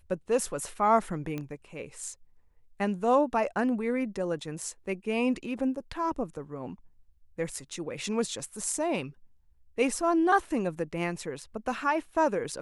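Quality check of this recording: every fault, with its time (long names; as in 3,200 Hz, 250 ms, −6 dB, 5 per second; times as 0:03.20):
0:01.38: click −22 dBFS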